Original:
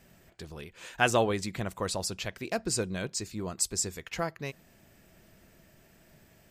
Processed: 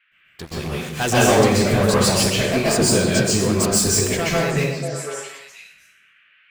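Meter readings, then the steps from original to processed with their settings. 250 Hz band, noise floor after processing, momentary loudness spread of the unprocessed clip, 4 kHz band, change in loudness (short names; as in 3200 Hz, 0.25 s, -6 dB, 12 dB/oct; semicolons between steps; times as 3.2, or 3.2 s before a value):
+16.5 dB, -57 dBFS, 18 LU, +14.5 dB, +13.5 dB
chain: gate with hold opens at -47 dBFS; sample leveller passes 5; band noise 1400–2900 Hz -55 dBFS; on a send: delay with a stepping band-pass 0.245 s, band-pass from 180 Hz, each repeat 1.4 oct, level -2 dB; on the sum: plate-style reverb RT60 0.77 s, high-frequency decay 0.85×, pre-delay 0.115 s, DRR -7 dB; gain -8.5 dB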